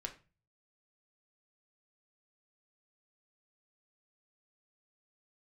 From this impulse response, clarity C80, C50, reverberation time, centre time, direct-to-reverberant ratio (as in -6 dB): 18.5 dB, 13.0 dB, 0.30 s, 11 ms, 2.5 dB